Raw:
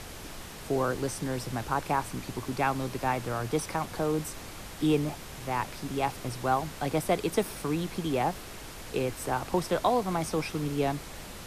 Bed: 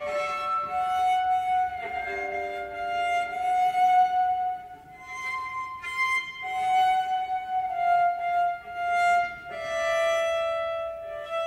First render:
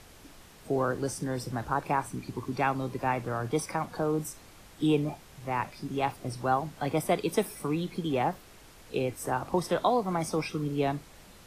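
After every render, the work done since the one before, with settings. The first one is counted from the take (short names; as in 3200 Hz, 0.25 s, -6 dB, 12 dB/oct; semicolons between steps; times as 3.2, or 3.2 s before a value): noise print and reduce 10 dB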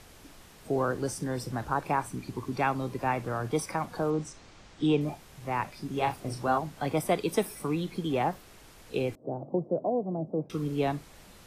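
4.1–5.01 LPF 7000 Hz 24 dB/oct; 5.93–6.58 doubler 35 ms -6 dB; 9.15–10.5 elliptic band-pass 130–640 Hz, stop band 60 dB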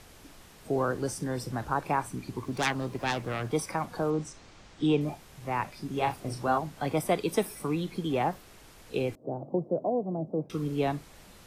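2.42–3.51 self-modulated delay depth 0.37 ms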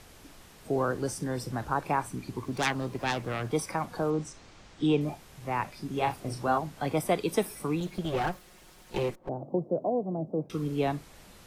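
7.8–9.29 minimum comb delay 5.5 ms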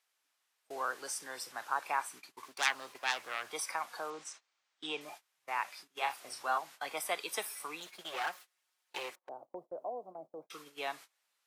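HPF 1100 Hz 12 dB/oct; gate -50 dBFS, range -24 dB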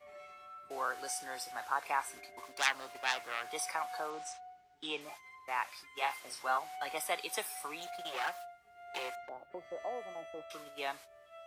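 add bed -23.5 dB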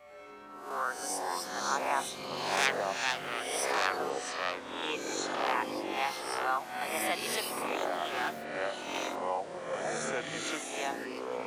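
spectral swells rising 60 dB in 0.68 s; echoes that change speed 0.1 s, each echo -6 st, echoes 3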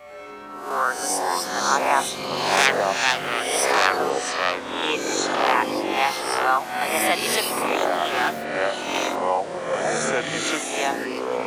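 gain +11 dB; limiter -3 dBFS, peak gain reduction 2 dB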